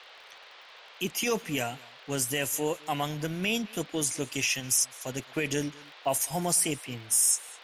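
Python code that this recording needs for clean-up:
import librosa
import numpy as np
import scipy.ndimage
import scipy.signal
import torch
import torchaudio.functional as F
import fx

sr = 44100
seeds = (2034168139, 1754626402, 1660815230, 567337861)

y = fx.fix_declick_ar(x, sr, threshold=6.5)
y = fx.noise_reduce(y, sr, print_start_s=0.45, print_end_s=0.95, reduce_db=24.0)
y = fx.fix_echo_inverse(y, sr, delay_ms=208, level_db=-23.0)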